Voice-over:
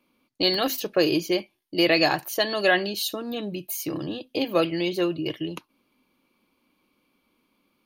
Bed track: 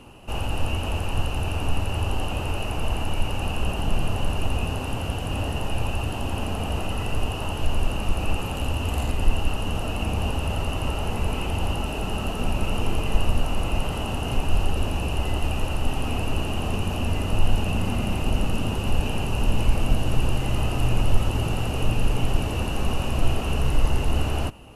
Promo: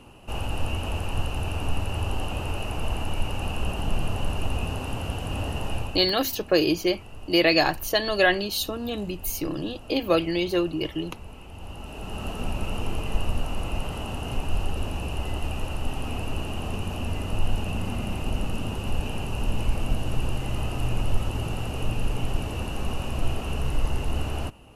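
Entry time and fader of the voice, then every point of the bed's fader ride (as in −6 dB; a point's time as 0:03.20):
5.55 s, +0.5 dB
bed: 0:05.75 −2.5 dB
0:06.20 −17 dB
0:11.48 −17 dB
0:12.27 −4.5 dB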